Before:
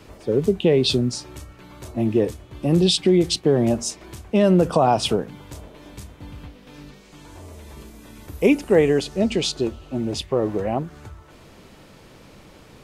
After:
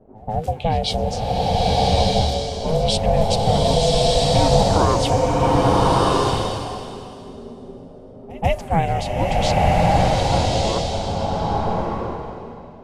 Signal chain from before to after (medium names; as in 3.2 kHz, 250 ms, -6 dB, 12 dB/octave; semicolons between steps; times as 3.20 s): level-controlled noise filter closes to 330 Hz, open at -17.5 dBFS; on a send: reverse echo 140 ms -21 dB; on the sum: ring modulator 320 Hz; swelling reverb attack 1250 ms, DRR -5.5 dB